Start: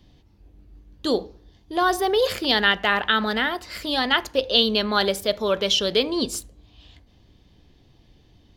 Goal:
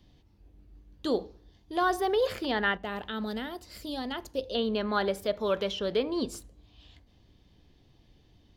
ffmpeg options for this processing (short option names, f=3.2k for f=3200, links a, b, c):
-filter_complex "[0:a]asettb=1/sr,asplit=3[a][b][c];[a]atrim=end=2.774[d];[b]atrim=start=2.77:end=4.55,asetpts=PTS-STARTPTS,afade=t=in:d=0.004:c=qsin,afade=t=out:st=1.776:d=0.004:c=qsin,equalizer=f=1.7k:t=o:w=2.5:g=-13[e];[c]atrim=start=4.546[f];[d][e]acrossfade=d=0.004:c1=hsin:c2=qsin[g];[g][f]acrossfade=d=0.004:c1=qsin:c2=hsin,acrossover=split=2100[h][i];[i]acompressor=threshold=-35dB:ratio=10[j];[h][j]amix=inputs=2:normalize=0,volume=-5.5dB"